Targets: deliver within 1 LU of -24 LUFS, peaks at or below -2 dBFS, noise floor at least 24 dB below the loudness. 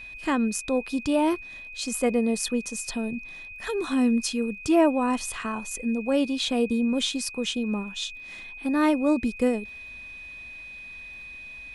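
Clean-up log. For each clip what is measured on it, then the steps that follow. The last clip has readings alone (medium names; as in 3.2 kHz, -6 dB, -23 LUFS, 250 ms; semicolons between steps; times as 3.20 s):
tick rate 34 per s; steady tone 2.5 kHz; tone level -39 dBFS; loudness -26.0 LUFS; peak level -11.0 dBFS; loudness target -24.0 LUFS
-> de-click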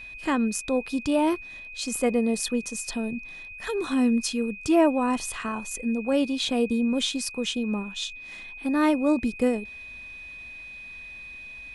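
tick rate 0.085 per s; steady tone 2.5 kHz; tone level -39 dBFS
-> band-stop 2.5 kHz, Q 30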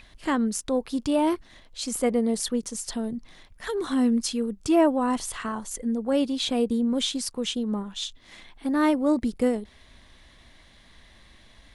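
steady tone not found; loudness -26.0 LUFS; peak level -10.5 dBFS; loudness target -24.0 LUFS
-> trim +2 dB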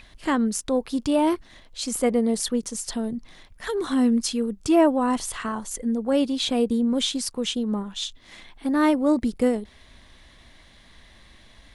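loudness -24.0 LUFS; peak level -8.5 dBFS; noise floor -52 dBFS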